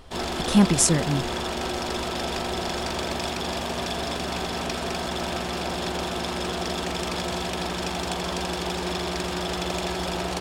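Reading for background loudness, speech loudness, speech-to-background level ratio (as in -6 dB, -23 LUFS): -28.5 LUFS, -21.0 LUFS, 7.5 dB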